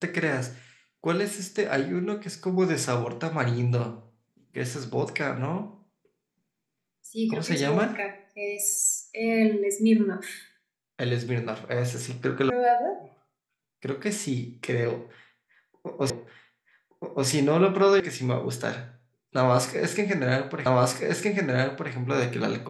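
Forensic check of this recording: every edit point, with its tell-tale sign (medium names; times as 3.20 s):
12.50 s: sound stops dead
16.10 s: repeat of the last 1.17 s
18.00 s: sound stops dead
20.66 s: repeat of the last 1.27 s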